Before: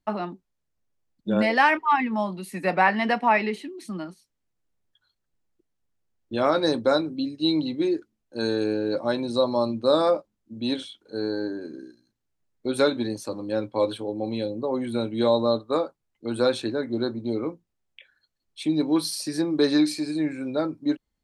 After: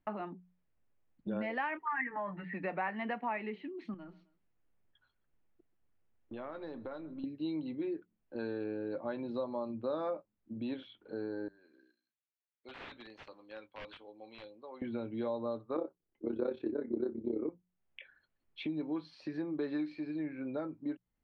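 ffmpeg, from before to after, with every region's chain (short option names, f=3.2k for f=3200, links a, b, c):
-filter_complex "[0:a]asettb=1/sr,asplit=3[a][b][c];[a]atrim=end=1.874[d];[b]atrim=start=1.87:end=2.54,asetpts=PTS-STARTPTS,afade=t=in:d=0.004:c=qsin,afade=t=out:st=0.666:d=0.004:c=qsin,aecho=1:1:6.8:0.96,atrim=end_sample=29547,acompressor=threshold=-22dB:ratio=3:attack=3.2:release=140:knee=1:detection=peak,lowpass=f=1.8k:t=q:w=11[e];[c]atrim=start=2.536[f];[d][e]acrossfade=d=0.004:c1=hsin:c2=qsin[g];[g][f]acrossfade=d=0.004:c1=qsin:c2=hsin,asettb=1/sr,asplit=3[h][i][j];[h]atrim=end=3.944[k];[i]atrim=start=3.94:end=7.24,asetpts=PTS-STARTPTS,afade=t=in:d=0.004:c=qsin,afade=t=out:st=3.296:d=0.004:c=qsin,aeval=exprs='if(lt(val(0),0),0.708*val(0),val(0))':c=same,acompressor=threshold=-49dB:ratio=2:attack=3.2:release=140:knee=1:detection=peak,aecho=1:1:131|262:0.0708|0.0255,atrim=end_sample=145530[l];[j]atrim=start=7.236[m];[k][l]acrossfade=d=0.004:c1=hsin:c2=qsin[n];[n][m]acrossfade=d=0.004:c1=qsin:c2=hsin,asettb=1/sr,asplit=3[o][p][q];[o]atrim=end=11.484[r];[p]atrim=start=11.48:end=14.82,asetpts=PTS-STARTPTS,afade=t=in:d=0.004:c=qsin,afade=t=out:st=3.336:d=0.004:c=qsin,aderivative,aeval=exprs='(mod(66.8*val(0)+1,2)-1)/66.8':c=same[s];[q]atrim=start=14.816[t];[r][s]acrossfade=d=0.004:c1=hsin:c2=qsin[u];[u][t]acrossfade=d=0.004:c1=qsin:c2=hsin,asettb=1/sr,asplit=3[v][w][x];[v]atrim=end=15.764[y];[w]atrim=start=15.76:end=17.49,asetpts=PTS-STARTPTS,afade=t=in:d=0.004:c=qsin,afade=t=out:st=1.726:d=0.004:c=qsin,equalizer=f=360:w=1.1:g=15,tremolo=f=33:d=0.824,asplit=2[z][aa];[aa]adelay=13,volume=-12dB[ab];[z][ab]amix=inputs=2:normalize=0,atrim=end_sample=76293[ac];[x]atrim=start=17.486[ad];[y][ac]acrossfade=d=0.004:c1=hsin:c2=qsin[ae];[ae][ad]acrossfade=d=0.004:c1=qsin:c2=hsin,lowpass=f=2.8k:w=0.5412,lowpass=f=2.8k:w=1.3066,bandreject=f=60:t=h:w=6,bandreject=f=120:t=h:w=6,bandreject=f=180:t=h:w=6,acompressor=threshold=-43dB:ratio=2.5,volume=1dB"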